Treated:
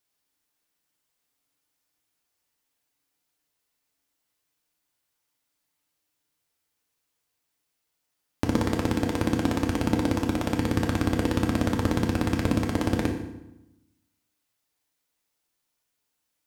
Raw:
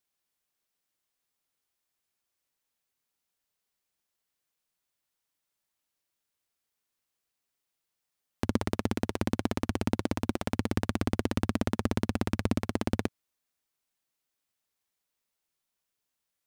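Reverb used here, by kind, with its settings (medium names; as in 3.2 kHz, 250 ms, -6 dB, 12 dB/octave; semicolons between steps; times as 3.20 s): FDN reverb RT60 0.91 s, low-frequency decay 1.3×, high-frequency decay 0.8×, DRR 1.5 dB; trim +3 dB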